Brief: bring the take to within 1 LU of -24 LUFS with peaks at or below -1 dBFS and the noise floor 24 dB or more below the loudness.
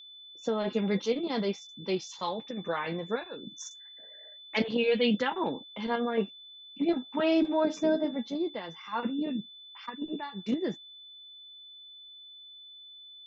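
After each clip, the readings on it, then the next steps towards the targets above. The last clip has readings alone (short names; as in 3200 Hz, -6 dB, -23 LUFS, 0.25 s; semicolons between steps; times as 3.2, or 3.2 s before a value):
steady tone 3500 Hz; tone level -47 dBFS; loudness -31.0 LUFS; peak -14.5 dBFS; loudness target -24.0 LUFS
-> notch 3500 Hz, Q 30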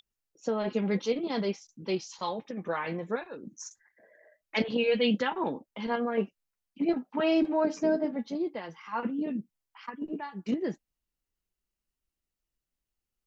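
steady tone none; loudness -31.0 LUFS; peak -14.5 dBFS; loudness target -24.0 LUFS
-> gain +7 dB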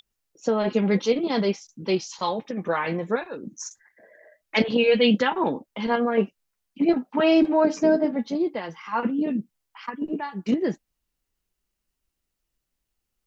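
loudness -24.0 LUFS; peak -7.5 dBFS; noise floor -81 dBFS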